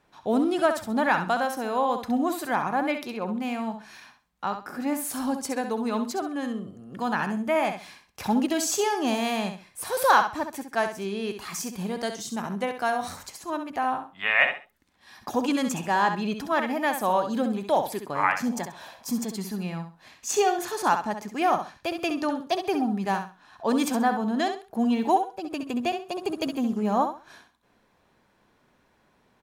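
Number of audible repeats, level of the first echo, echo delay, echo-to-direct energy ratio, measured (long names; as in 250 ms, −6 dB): 3, −8.0 dB, 66 ms, −7.5 dB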